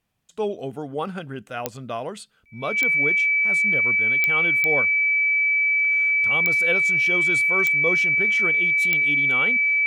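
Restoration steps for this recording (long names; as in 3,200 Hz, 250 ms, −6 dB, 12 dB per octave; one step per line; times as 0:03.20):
click removal
notch filter 2,300 Hz, Q 30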